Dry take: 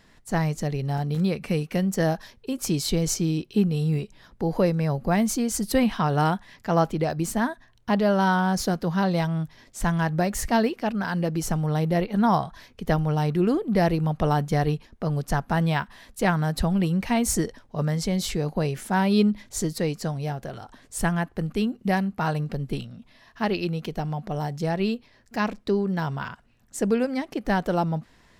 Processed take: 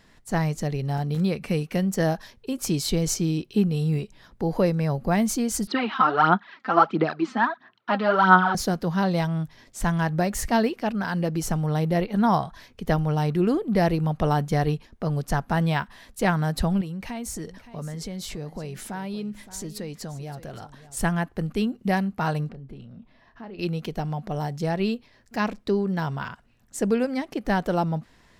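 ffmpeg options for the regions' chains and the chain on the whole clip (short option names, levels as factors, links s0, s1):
-filter_complex "[0:a]asettb=1/sr,asplit=3[s0][s1][s2];[s0]atrim=end=5.674[s3];[s1]atrim=start=5.67:end=8.55,asetpts=PTS-STARTPTS,afade=t=in:d=0.004:c=qsin,afade=t=out:st=2.876:d=0.004:c=qsin,aphaser=in_gain=1:out_gain=1:delay=3.9:decay=0.65:speed=1.5:type=sinusoidal,highpass=f=210:w=0.5412,highpass=f=210:w=1.3066,equalizer=f=260:t=q:w=4:g=-3,equalizer=f=520:t=q:w=4:g=-7,equalizer=f=1300:t=q:w=4:g=10,lowpass=f=4000:w=0.5412,lowpass=f=4000:w=1.3066[s4];[s2]atrim=start=8.546[s5];[s3][s4]acrossfade=d=0.004:c1=hsin:c2=qsin[s6];[s6][s5]acrossfade=d=0.004:c1=qsin:c2=hsin,asettb=1/sr,asplit=3[s7][s8][s9];[s7]atrim=end=16.814[s10];[s8]atrim=start=16.81:end=20.97,asetpts=PTS-STARTPTS,afade=t=in:d=0.004:c=qsin,afade=t=out:st=4.156:d=0.004:c=qsin,acompressor=threshold=0.0224:ratio=3:attack=3.2:release=140:knee=1:detection=peak,aecho=1:1:569:0.178,atrim=end_sample=183456[s11];[s9]atrim=start=20.966[s12];[s10][s11]acrossfade=d=0.004:c1=hsin:c2=qsin[s13];[s13][s12]acrossfade=d=0.004:c1=qsin:c2=hsin,asettb=1/sr,asplit=3[s14][s15][s16];[s14]atrim=end=22.494[s17];[s15]atrim=start=22.49:end=23.59,asetpts=PTS-STARTPTS,afade=t=in:d=0.004:c=qsin,afade=t=out:st=1.096:d=0.004:c=qsin,lowpass=f=1200:p=1,acompressor=threshold=0.0112:ratio=4:attack=3.2:release=140:knee=1:detection=peak,asplit=2[s18][s19];[s19]adelay=30,volume=0.282[s20];[s18][s20]amix=inputs=2:normalize=0,atrim=end_sample=48510[s21];[s16]atrim=start=23.586[s22];[s17][s21]acrossfade=d=0.004:c1=hsin:c2=qsin[s23];[s23][s22]acrossfade=d=0.004:c1=qsin:c2=hsin"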